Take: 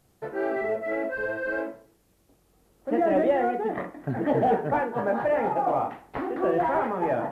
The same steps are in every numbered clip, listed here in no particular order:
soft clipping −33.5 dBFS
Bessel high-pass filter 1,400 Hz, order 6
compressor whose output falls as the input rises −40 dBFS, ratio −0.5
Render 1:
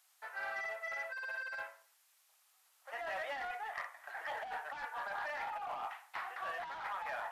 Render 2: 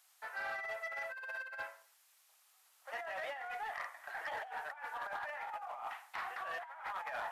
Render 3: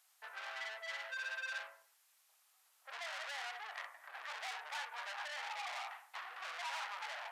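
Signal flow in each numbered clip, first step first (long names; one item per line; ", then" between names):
Bessel high-pass filter, then soft clipping, then compressor whose output falls as the input rises
Bessel high-pass filter, then compressor whose output falls as the input rises, then soft clipping
soft clipping, then Bessel high-pass filter, then compressor whose output falls as the input rises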